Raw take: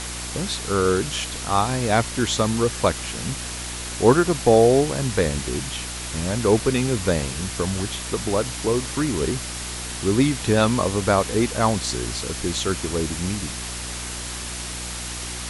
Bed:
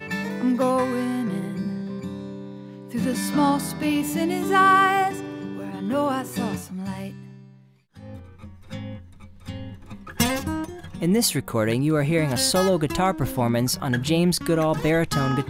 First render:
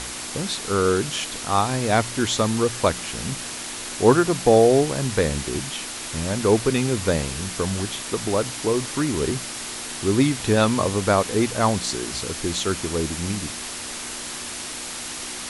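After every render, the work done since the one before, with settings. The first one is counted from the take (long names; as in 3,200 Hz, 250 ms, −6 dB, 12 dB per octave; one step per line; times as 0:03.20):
hum removal 60 Hz, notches 3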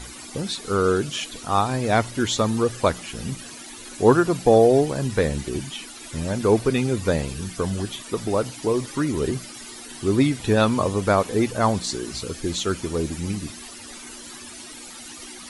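broadband denoise 14 dB, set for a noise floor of −33 dBFS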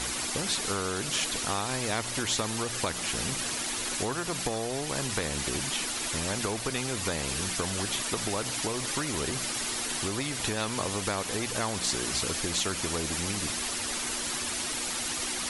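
downward compressor, threshold −24 dBFS, peak gain reduction 14 dB
every bin compressed towards the loudest bin 2 to 1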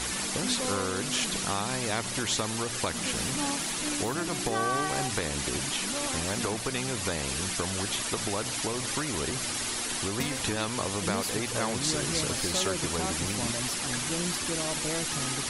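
mix in bed −14 dB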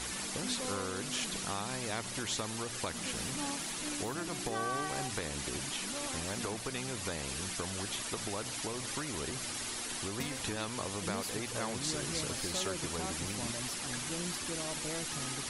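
level −7 dB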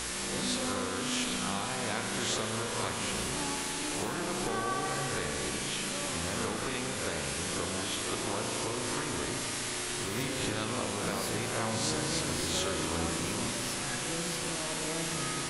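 peak hold with a rise ahead of every peak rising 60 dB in 0.77 s
spring reverb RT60 3.2 s, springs 36 ms, chirp 70 ms, DRR 1.5 dB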